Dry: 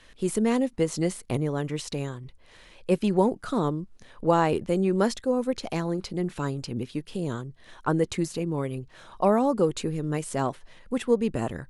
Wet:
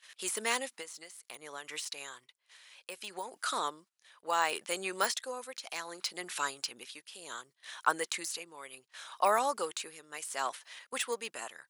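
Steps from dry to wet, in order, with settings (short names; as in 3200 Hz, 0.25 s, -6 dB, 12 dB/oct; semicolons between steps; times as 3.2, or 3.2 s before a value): de-esser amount 85%; HPF 1200 Hz 12 dB/oct; gate -58 dBFS, range -15 dB; high shelf 4200 Hz +8 dB; 0.79–3.33 compressor 5:1, threshold -42 dBFS, peak gain reduction 12.5 dB; tremolo triangle 0.67 Hz, depth 75%; gain +5.5 dB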